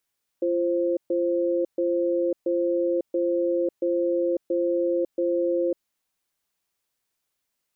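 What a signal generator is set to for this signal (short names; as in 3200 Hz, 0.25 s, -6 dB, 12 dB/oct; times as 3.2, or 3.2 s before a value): cadence 344 Hz, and 525 Hz, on 0.55 s, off 0.13 s, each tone -23.5 dBFS 5.42 s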